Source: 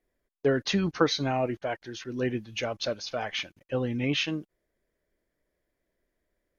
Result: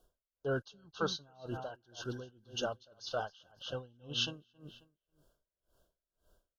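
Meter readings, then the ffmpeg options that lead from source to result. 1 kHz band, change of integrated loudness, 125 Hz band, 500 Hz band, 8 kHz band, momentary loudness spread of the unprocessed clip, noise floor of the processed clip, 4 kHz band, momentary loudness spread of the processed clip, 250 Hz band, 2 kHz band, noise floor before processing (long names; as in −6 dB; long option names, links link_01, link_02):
−9.0 dB, −10.0 dB, −11.0 dB, −10.5 dB, can't be measured, 9 LU, below −85 dBFS, −6.5 dB, 15 LU, −15.5 dB, −10.5 dB, −82 dBFS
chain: -filter_complex "[0:a]asuperstop=centerf=2100:order=20:qfactor=1.9,equalizer=frequency=280:width_type=o:width=1.2:gain=-9.5,areverse,acompressor=threshold=-43dB:ratio=6,areverse,asplit=2[link_01][link_02];[link_02]adelay=270,lowpass=frequency=4500:poles=1,volume=-10dB,asplit=2[link_03][link_04];[link_04]adelay=270,lowpass=frequency=4500:poles=1,volume=0.27,asplit=2[link_05][link_06];[link_06]adelay=270,lowpass=frequency=4500:poles=1,volume=0.27[link_07];[link_01][link_03][link_05][link_07]amix=inputs=4:normalize=0,aeval=exprs='val(0)*pow(10,-30*(0.5-0.5*cos(2*PI*1.9*n/s))/20)':channel_layout=same,volume=11.5dB"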